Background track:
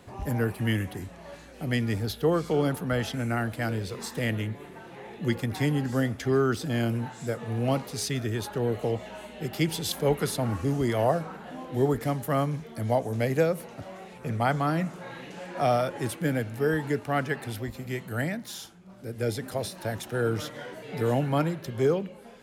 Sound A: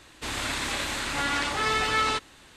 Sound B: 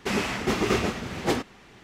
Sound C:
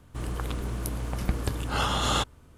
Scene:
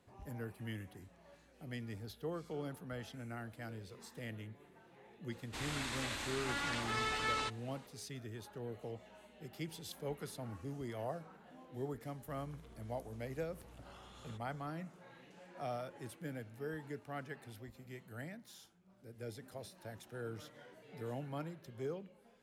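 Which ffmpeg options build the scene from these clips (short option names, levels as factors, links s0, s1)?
-filter_complex "[0:a]volume=0.133[s0];[3:a]acompressor=threshold=0.00891:ratio=6:attack=3.2:release=140:knee=1:detection=peak[s1];[1:a]atrim=end=2.56,asetpts=PTS-STARTPTS,volume=0.266,afade=t=in:d=0.004:c=hsin,afade=t=out:st=2.556:d=0.004:c=hsin,adelay=5310[s2];[s1]atrim=end=2.57,asetpts=PTS-STARTPTS,volume=0.2,afade=t=in:d=0.004:c=hsin,afade=t=out:st=2.566:d=0.004:c=hsin,adelay=12140[s3];[s0][s2][s3]amix=inputs=3:normalize=0"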